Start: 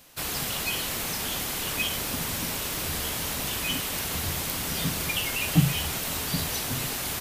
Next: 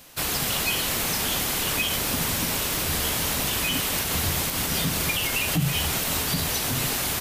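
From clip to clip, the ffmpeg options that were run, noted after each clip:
-af "alimiter=limit=-19.5dB:level=0:latency=1:release=81,volume=5dB"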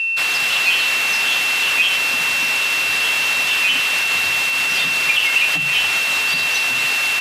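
-af "aeval=exprs='val(0)+0.0447*sin(2*PI*2700*n/s)':c=same,bandpass=f=2.3k:t=q:w=0.88:csg=0,acontrast=56,volume=4dB"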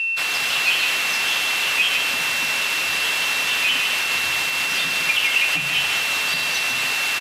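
-af "aecho=1:1:152:0.473,volume=-2.5dB"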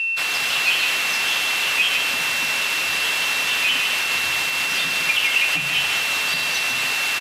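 -af anull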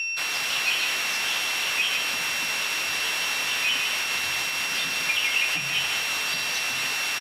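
-filter_complex "[0:a]aeval=exprs='val(0)+0.0282*sin(2*PI*5600*n/s)':c=same,asplit=2[a][b];[b]adelay=22,volume=-11dB[c];[a][c]amix=inputs=2:normalize=0,volume=-5dB"

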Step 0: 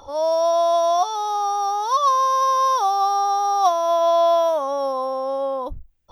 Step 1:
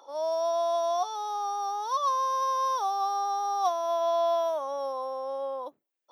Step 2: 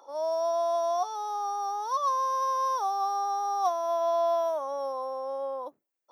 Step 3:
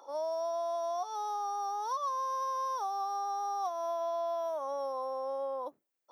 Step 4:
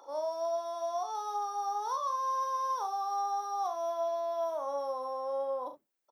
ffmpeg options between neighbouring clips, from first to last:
-af "highpass=f=320:w=0.5412,highpass=f=320:w=1.3066,volume=-9dB"
-af "equalizer=f=3.4k:t=o:w=0.82:g=-7"
-af "acompressor=threshold=-32dB:ratio=5"
-af "aecho=1:1:39|70:0.398|0.237"

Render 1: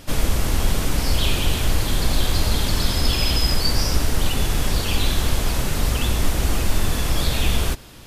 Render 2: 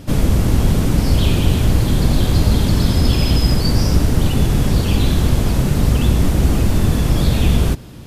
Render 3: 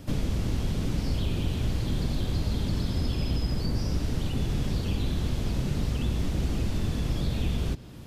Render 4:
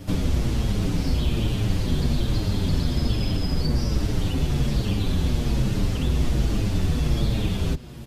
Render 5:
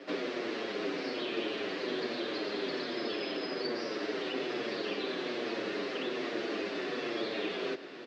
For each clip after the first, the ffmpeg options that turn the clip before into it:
-af "equalizer=f=150:w=0.33:g=14,volume=-2dB"
-filter_complex "[0:a]acrossover=split=580|2300|6300[a][b][c][d];[a]acompressor=threshold=-16dB:ratio=4[e];[b]acompressor=threshold=-40dB:ratio=4[f];[c]acompressor=threshold=-35dB:ratio=4[g];[d]acompressor=threshold=-50dB:ratio=4[h];[e][f][g][h]amix=inputs=4:normalize=0,volume=-8dB"
-filter_complex "[0:a]asplit=2[a][b];[b]adelay=7.3,afreqshift=-1.2[c];[a][c]amix=inputs=2:normalize=1,volume=8dB"
-af "highpass=f=360:w=0.5412,highpass=f=360:w=1.3066,equalizer=f=380:t=q:w=4:g=4,equalizer=f=870:t=q:w=4:g=-7,equalizer=f=1.8k:t=q:w=4:g=4,equalizer=f=3.3k:t=q:w=4:g=-5,lowpass=f=4.2k:w=0.5412,lowpass=f=4.2k:w=1.3066,aecho=1:1:1070:0.237"

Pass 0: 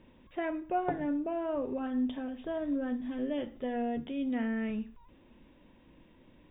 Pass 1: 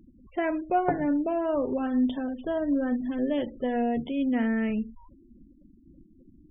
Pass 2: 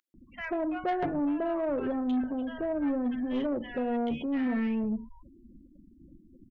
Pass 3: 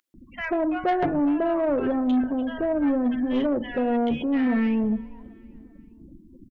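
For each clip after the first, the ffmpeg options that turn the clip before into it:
-af "afftfilt=real='re*gte(hypot(re,im),0.00447)':imag='im*gte(hypot(re,im),0.00447)':win_size=1024:overlap=0.75,volume=6.5dB"
-filter_complex "[0:a]acrossover=split=1100[a][b];[a]adelay=140[c];[c][b]amix=inputs=2:normalize=0,asoftclip=type=tanh:threshold=-24dB"
-af "aecho=1:1:392|784|1176:0.0631|0.0309|0.0151,volume=6.5dB"

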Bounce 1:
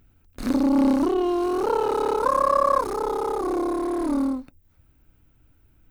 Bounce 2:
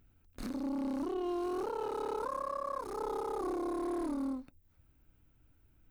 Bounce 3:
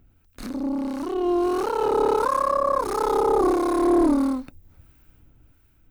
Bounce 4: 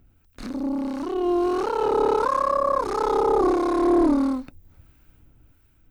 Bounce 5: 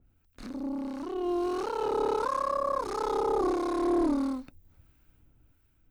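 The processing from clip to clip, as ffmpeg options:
-af "alimiter=limit=-21dB:level=0:latency=1:release=347,volume=-7.5dB"
-filter_complex "[0:a]dynaudnorm=f=410:g=7:m=9dB,acrossover=split=1000[a][b];[a]aeval=exprs='val(0)*(1-0.5/2+0.5/2*cos(2*PI*1.5*n/s))':c=same[c];[b]aeval=exprs='val(0)*(1-0.5/2-0.5/2*cos(2*PI*1.5*n/s))':c=same[d];[c][d]amix=inputs=2:normalize=0,volume=9dB"
-filter_complex "[0:a]acrossover=split=7400[a][b];[b]acompressor=threshold=-58dB:ratio=4:attack=1:release=60[c];[a][c]amix=inputs=2:normalize=0"
-af "adynamicequalizer=threshold=0.0178:dfrequency=2600:dqfactor=0.7:tfrequency=2600:tqfactor=0.7:attack=5:release=100:ratio=0.375:range=2:mode=boostabove:tftype=highshelf,volume=-7.5dB"

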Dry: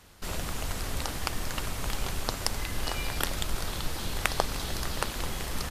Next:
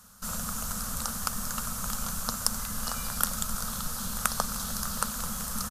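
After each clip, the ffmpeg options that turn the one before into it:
-af "firequalizer=gain_entry='entry(130,0);entry(220,13);entry(330,-23);entry(470,-1);entry(810,-1);entry(1300,11);entry(2000,-7);entry(6300,11);entry(12000,13)':delay=0.05:min_phase=1,volume=-5dB"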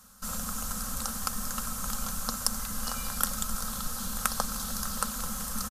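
-af "aecho=1:1:3.8:0.37,volume=-1.5dB"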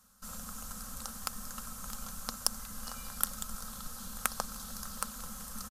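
-af "aeval=exprs='0.75*(cos(1*acos(clip(val(0)/0.75,-1,1)))-cos(1*PI/2))+0.0668*(cos(3*acos(clip(val(0)/0.75,-1,1)))-cos(3*PI/2))+0.0422*(cos(7*acos(clip(val(0)/0.75,-1,1)))-cos(7*PI/2))':c=same"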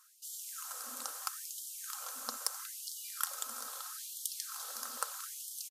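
-af "asoftclip=type=tanh:threshold=-17dB,afftfilt=real='re*gte(b*sr/1024,220*pow(3000/220,0.5+0.5*sin(2*PI*0.77*pts/sr)))':imag='im*gte(b*sr/1024,220*pow(3000/220,0.5+0.5*sin(2*PI*0.77*pts/sr)))':win_size=1024:overlap=0.75,volume=2dB"

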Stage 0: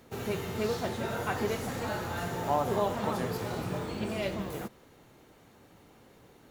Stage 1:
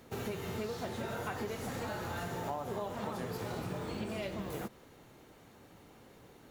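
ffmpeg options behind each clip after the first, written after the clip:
-af "acompressor=threshold=-35dB:ratio=6"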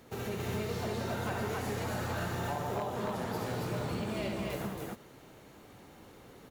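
-af "aecho=1:1:67.06|183.7|274.1:0.562|0.316|0.891,aeval=exprs='0.0473*(abs(mod(val(0)/0.0473+3,4)-2)-1)':c=same"

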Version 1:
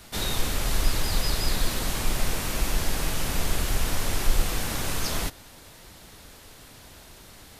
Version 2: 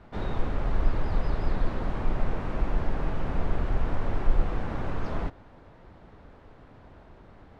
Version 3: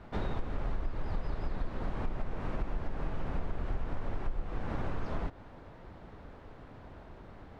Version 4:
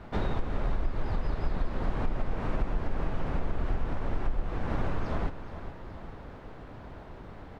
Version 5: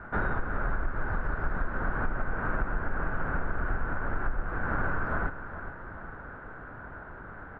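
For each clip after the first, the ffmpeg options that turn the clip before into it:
-af "lowpass=1.2k"
-af "acompressor=threshold=-30dB:ratio=6,volume=1dB"
-af "aecho=1:1:419|838|1257|1676|2095|2514:0.237|0.128|0.0691|0.0373|0.0202|0.0109,volume=4.5dB"
-af "lowpass=f=1.5k:t=q:w=7.3,volume=-1.5dB"

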